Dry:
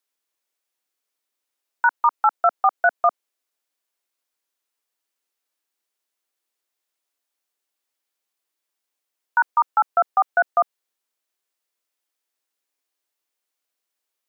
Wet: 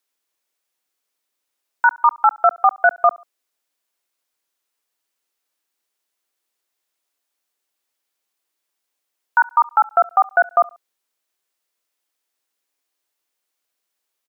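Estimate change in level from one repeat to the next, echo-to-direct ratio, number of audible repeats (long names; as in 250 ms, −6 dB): −9.0 dB, −23.5 dB, 2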